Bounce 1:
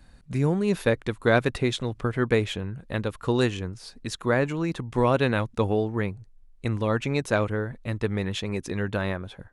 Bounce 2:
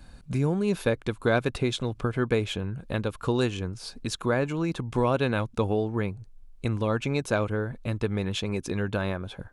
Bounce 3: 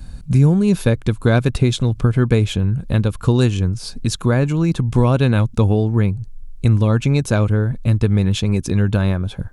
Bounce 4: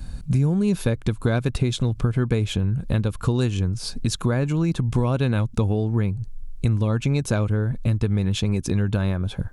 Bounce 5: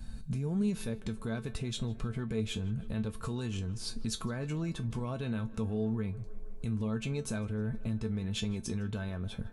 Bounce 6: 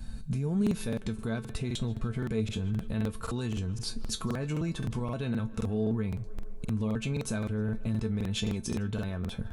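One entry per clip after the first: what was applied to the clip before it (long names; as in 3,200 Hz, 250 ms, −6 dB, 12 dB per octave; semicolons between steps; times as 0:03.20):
notch filter 1,900 Hz, Q 7; downward compressor 1.5 to 1, threshold −37 dBFS, peak gain reduction 8 dB; level +4.5 dB
bass and treble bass +12 dB, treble +6 dB; level +4 dB
downward compressor 2.5 to 1, threshold −20 dBFS, peak gain reduction 8 dB
brickwall limiter −16.5 dBFS, peak gain reduction 9.5 dB; tuned comb filter 220 Hz, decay 0.17 s, harmonics all, mix 80%; tape delay 156 ms, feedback 89%, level −20 dB, low-pass 3,300 Hz
regular buffer underruns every 0.26 s, samples 2,048, repeat, from 0:00.62; level +3 dB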